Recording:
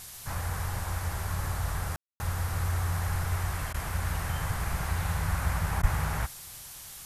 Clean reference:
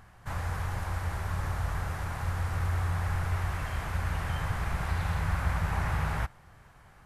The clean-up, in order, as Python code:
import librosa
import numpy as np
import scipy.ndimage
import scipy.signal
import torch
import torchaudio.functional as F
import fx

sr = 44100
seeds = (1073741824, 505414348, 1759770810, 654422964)

y = fx.highpass(x, sr, hz=140.0, slope=24, at=(5.81, 5.93), fade=0.02)
y = fx.fix_ambience(y, sr, seeds[0], print_start_s=6.51, print_end_s=7.01, start_s=1.96, end_s=2.2)
y = fx.fix_interpolate(y, sr, at_s=(3.73, 5.82), length_ms=11.0)
y = fx.noise_reduce(y, sr, print_start_s=6.51, print_end_s=7.01, reduce_db=9.0)